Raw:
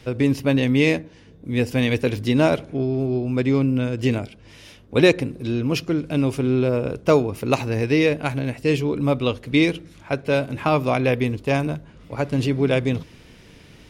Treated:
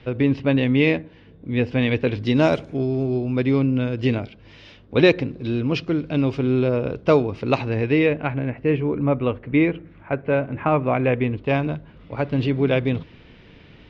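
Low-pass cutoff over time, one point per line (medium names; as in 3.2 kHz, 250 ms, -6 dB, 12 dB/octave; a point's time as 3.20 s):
low-pass 24 dB/octave
2.07 s 3.6 kHz
2.66 s 8.3 kHz
3.40 s 4.5 kHz
7.46 s 4.5 kHz
8.53 s 2.3 kHz
10.91 s 2.3 kHz
11.63 s 3.8 kHz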